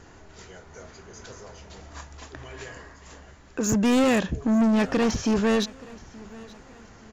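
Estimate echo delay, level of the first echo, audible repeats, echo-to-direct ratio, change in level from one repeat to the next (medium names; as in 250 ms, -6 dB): 876 ms, -22.0 dB, 2, -21.0 dB, -7.5 dB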